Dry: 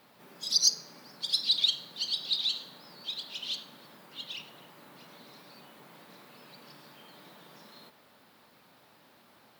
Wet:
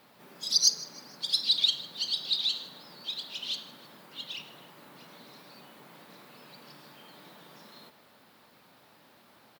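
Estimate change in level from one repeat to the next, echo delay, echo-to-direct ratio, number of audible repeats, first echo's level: -7.0 dB, 155 ms, -19.5 dB, 3, -20.5 dB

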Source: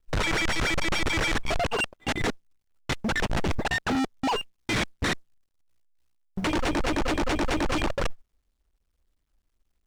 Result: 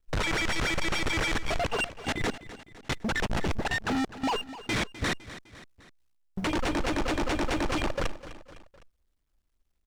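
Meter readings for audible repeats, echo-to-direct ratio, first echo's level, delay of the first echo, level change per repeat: 3, -13.5 dB, -15.0 dB, 254 ms, -5.5 dB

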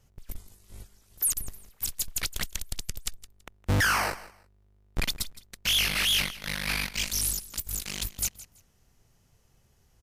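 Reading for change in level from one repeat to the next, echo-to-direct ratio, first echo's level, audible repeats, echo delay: -13.5 dB, -17.5 dB, -17.5 dB, 2, 165 ms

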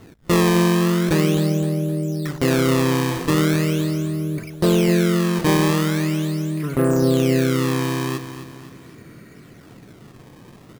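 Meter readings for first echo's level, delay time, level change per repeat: -11.0 dB, 258 ms, -6.5 dB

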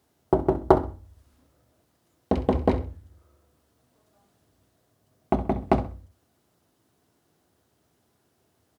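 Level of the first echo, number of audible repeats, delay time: -14.0 dB, 2, 65 ms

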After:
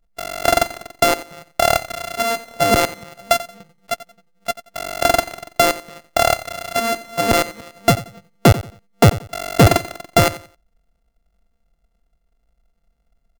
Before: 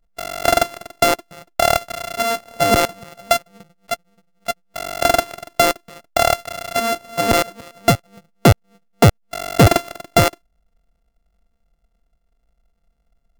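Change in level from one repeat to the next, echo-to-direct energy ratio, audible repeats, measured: -11.5 dB, -15.5 dB, 2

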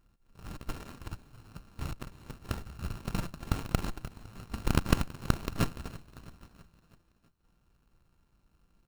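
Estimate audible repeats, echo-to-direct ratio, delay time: 4, -18.5 dB, 327 ms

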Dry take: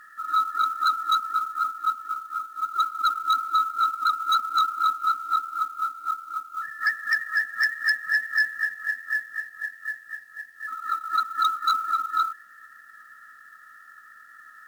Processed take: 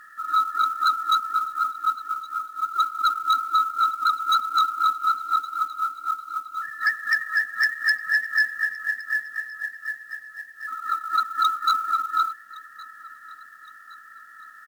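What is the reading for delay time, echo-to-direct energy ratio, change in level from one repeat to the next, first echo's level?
1115 ms, -20.0 dB, -6.0 dB, -21.0 dB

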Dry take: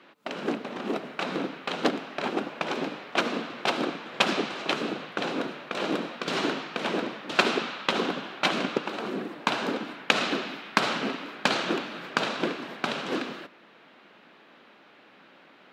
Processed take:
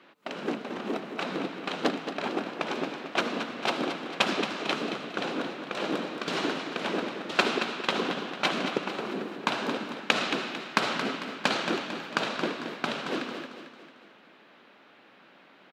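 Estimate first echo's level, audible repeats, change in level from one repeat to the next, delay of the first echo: -9.0 dB, 4, -6.5 dB, 224 ms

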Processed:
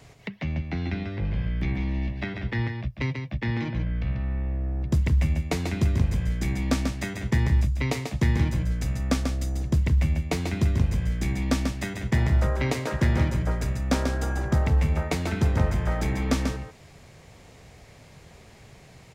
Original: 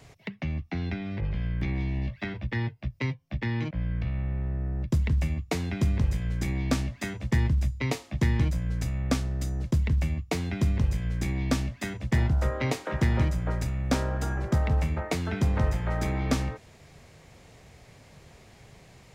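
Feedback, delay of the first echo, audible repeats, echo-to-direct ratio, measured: no regular repeats, 141 ms, 1, -6.0 dB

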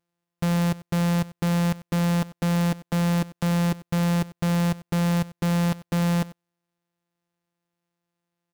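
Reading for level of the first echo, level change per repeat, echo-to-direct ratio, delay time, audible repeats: -18.5 dB, no regular repeats, -18.5 dB, 94 ms, 1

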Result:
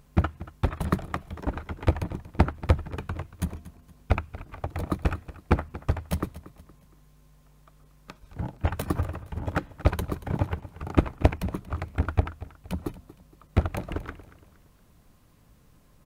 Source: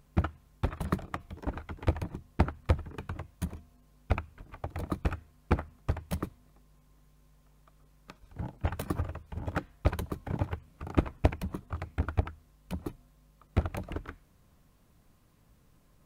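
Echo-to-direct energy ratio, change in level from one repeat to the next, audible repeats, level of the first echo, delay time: -16.5 dB, -8.0 dB, 3, -17.0 dB, 233 ms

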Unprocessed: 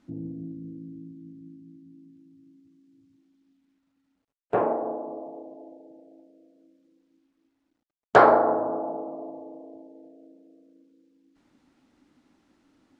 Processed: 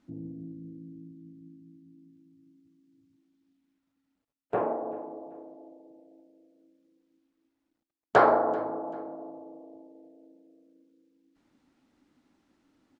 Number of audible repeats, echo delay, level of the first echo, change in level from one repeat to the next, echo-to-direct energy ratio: 2, 387 ms, -21.0 dB, -9.5 dB, -20.5 dB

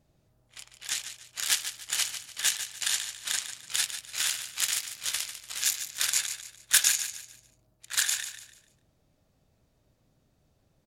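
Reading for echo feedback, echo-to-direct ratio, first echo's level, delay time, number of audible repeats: 33%, -9.5 dB, -10.0 dB, 147 ms, 3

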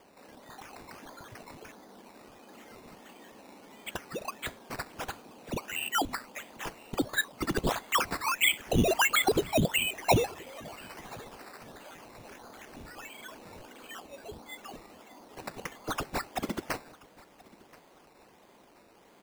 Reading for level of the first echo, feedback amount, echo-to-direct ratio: -23.0 dB, 31%, -22.5 dB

